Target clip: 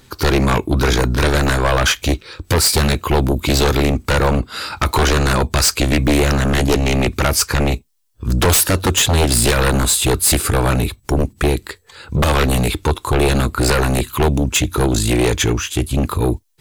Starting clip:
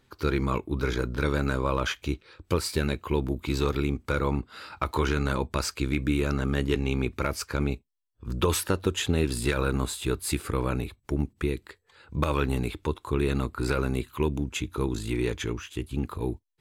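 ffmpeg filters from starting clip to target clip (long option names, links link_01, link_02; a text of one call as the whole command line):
ffmpeg -i in.wav -af "bass=frequency=250:gain=2,treble=frequency=4000:gain=8,aeval=exprs='0.335*sin(PI/2*3.55*val(0)/0.335)':channel_layout=same" out.wav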